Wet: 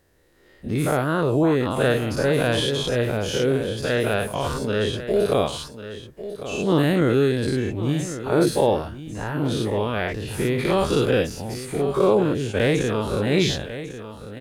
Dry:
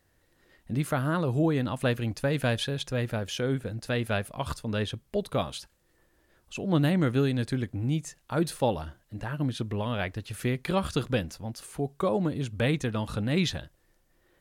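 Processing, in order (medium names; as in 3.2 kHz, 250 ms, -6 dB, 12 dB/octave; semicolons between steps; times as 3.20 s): every event in the spectrogram widened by 120 ms; peaking EQ 410 Hz +7 dB 0.69 oct; delay 1097 ms -12.5 dB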